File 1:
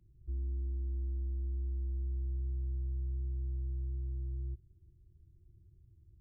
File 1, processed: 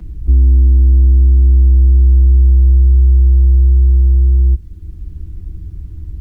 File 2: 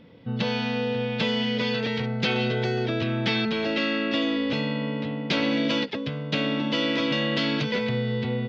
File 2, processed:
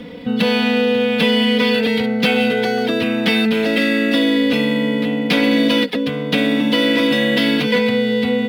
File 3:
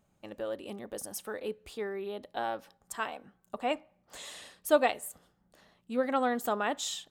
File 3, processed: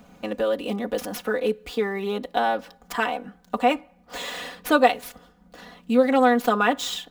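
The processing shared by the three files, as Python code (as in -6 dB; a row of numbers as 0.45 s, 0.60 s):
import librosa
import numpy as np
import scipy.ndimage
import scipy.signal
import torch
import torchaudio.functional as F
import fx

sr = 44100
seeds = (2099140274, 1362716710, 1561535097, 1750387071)

y = scipy.signal.medfilt(x, 5)
y = y + 0.85 * np.pad(y, (int(4.1 * sr / 1000.0), 0))[:len(y)]
y = fx.band_squash(y, sr, depth_pct=40)
y = librosa.util.normalize(y) * 10.0 ** (-3 / 20.0)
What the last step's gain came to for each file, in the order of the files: +26.0 dB, +6.0 dB, +8.5 dB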